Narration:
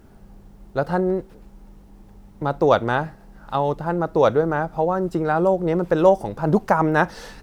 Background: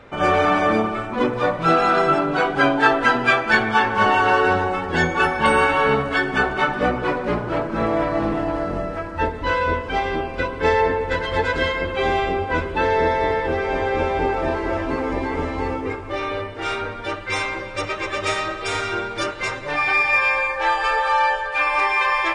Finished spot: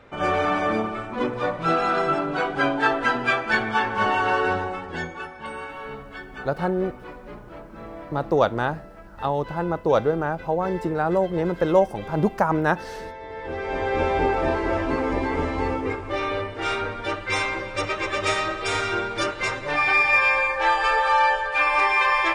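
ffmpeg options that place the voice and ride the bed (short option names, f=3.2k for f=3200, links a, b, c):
-filter_complex "[0:a]adelay=5700,volume=-3dB[a];[1:a]volume=12.5dB,afade=t=out:st=4.49:d=0.78:silence=0.223872,afade=t=in:st=13.28:d=0.83:silence=0.133352[b];[a][b]amix=inputs=2:normalize=0"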